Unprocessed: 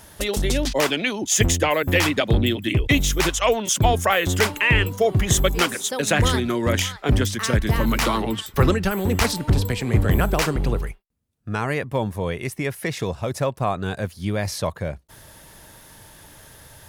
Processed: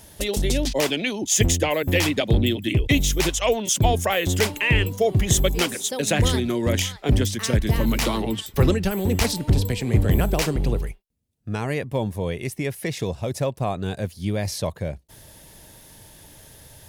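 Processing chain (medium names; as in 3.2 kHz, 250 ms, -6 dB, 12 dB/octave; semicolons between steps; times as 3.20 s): peaking EQ 1.3 kHz -8.5 dB 1.1 oct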